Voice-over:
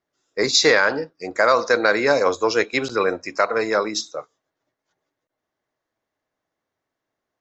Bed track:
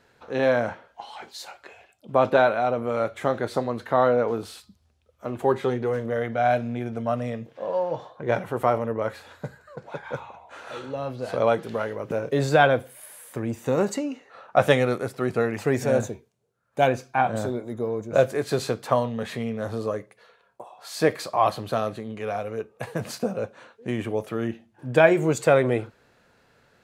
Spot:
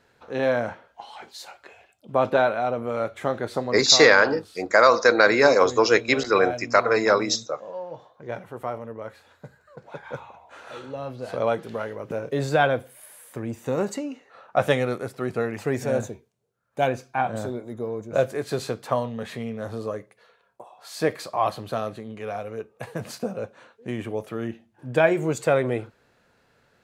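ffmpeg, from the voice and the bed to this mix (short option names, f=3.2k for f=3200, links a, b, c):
-filter_complex "[0:a]adelay=3350,volume=1dB[a];[1:a]volume=5dB,afade=t=out:st=3.7:d=0.32:silence=0.421697,afade=t=in:st=9.44:d=0.61:silence=0.473151[b];[a][b]amix=inputs=2:normalize=0"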